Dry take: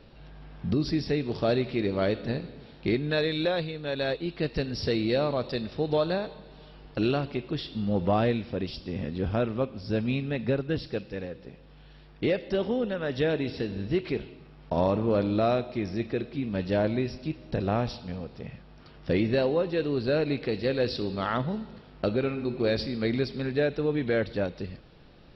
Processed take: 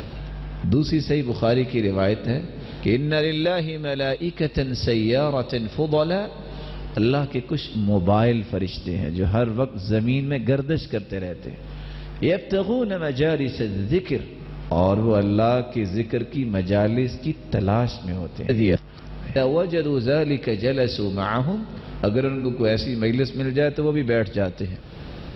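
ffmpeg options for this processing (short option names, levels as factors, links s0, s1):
-filter_complex "[0:a]asplit=3[s0][s1][s2];[s0]atrim=end=18.492[s3];[s1]atrim=start=18.488:end=19.362,asetpts=PTS-STARTPTS,areverse[s4];[s2]atrim=start=19.358[s5];[s3][s4]acrossfade=d=0.004:c1=hsin:c2=hsin[s6];[s6][s5]acrossfade=d=0.004:c1=hsin:c2=hsin,highpass=60,lowshelf=f=99:g=11,acompressor=mode=upward:threshold=0.0398:ratio=2.5,volume=1.68"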